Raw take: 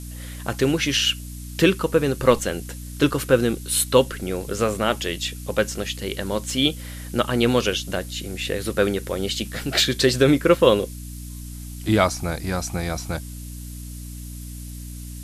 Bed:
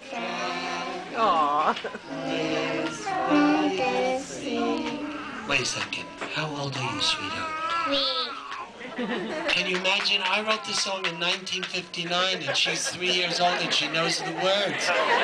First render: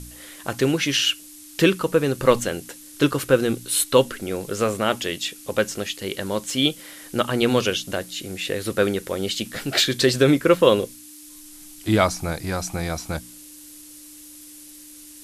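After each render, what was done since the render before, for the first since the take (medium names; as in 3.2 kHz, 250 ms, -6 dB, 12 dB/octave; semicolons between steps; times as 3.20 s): de-hum 60 Hz, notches 4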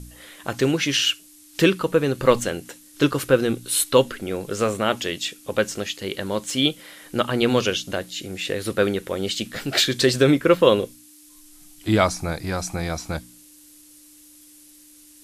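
noise print and reduce 6 dB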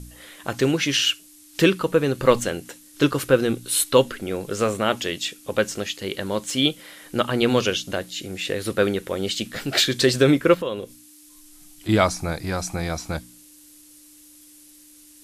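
10.54–11.89 s: compression 2:1, threshold -33 dBFS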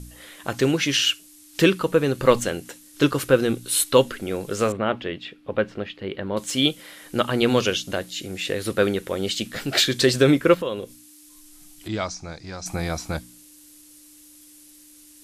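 4.72–6.37 s: distance through air 410 m; 11.88–12.66 s: four-pole ladder low-pass 6.9 kHz, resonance 50%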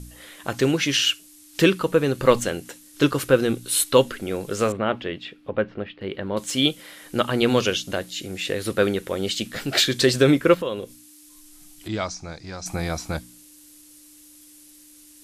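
5.50–6.01 s: distance through air 240 m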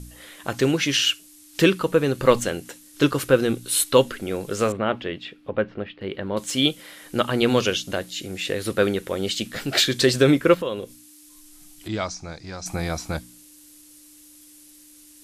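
no audible change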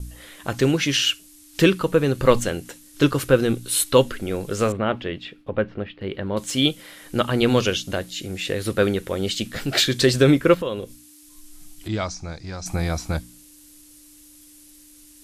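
gate with hold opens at -40 dBFS; bass shelf 100 Hz +10.5 dB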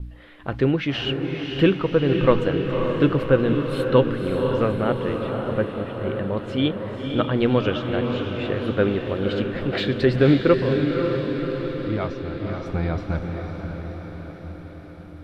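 distance through air 420 m; echo that smears into a reverb 536 ms, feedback 63%, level -5 dB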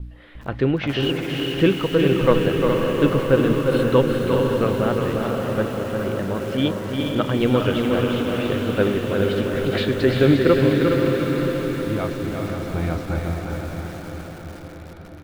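feedback delay 352 ms, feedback 49%, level -5.5 dB; bit-crushed delay 412 ms, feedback 35%, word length 6-bit, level -7 dB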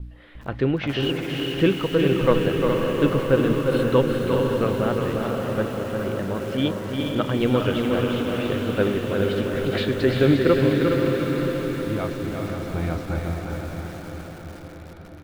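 trim -2 dB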